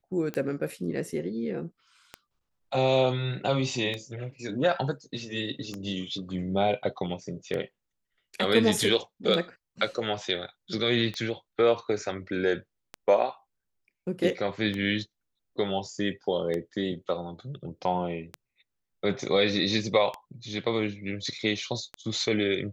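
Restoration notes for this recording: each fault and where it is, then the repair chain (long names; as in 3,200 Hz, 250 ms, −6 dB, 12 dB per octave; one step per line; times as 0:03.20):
scratch tick 33 1/3 rpm −19 dBFS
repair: click removal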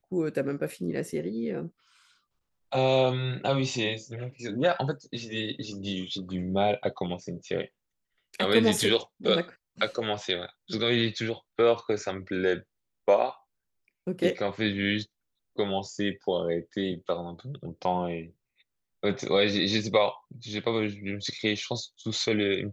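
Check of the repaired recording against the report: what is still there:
none of them is left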